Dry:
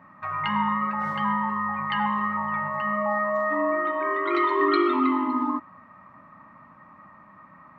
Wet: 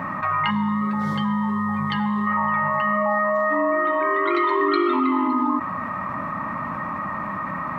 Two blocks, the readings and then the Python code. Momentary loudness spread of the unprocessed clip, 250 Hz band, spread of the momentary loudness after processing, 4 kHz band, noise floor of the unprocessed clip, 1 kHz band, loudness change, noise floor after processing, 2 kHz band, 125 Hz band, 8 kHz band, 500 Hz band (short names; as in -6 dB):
6 LU, +5.0 dB, 8 LU, +3.0 dB, -52 dBFS, +3.0 dB, +2.5 dB, -29 dBFS, +3.5 dB, +9.0 dB, n/a, +3.5 dB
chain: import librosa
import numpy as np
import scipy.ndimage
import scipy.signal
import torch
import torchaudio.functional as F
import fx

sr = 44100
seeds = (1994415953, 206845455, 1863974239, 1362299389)

y = fx.spec_box(x, sr, start_s=0.5, length_s=1.77, low_hz=520.0, high_hz=3100.0, gain_db=-11)
y = fx.env_flatten(y, sr, amount_pct=70)